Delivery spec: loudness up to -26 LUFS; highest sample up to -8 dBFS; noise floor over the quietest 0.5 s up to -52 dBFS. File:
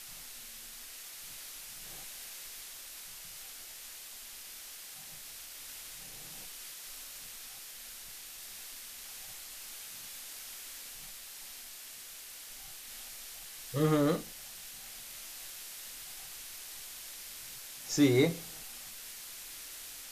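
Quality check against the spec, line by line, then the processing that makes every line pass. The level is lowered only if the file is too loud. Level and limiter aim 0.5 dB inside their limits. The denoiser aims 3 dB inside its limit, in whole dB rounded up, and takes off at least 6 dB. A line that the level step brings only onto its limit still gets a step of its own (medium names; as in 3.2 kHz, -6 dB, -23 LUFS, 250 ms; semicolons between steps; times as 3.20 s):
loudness -39.0 LUFS: pass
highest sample -14.5 dBFS: pass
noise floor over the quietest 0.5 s -48 dBFS: fail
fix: noise reduction 7 dB, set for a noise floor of -48 dBFS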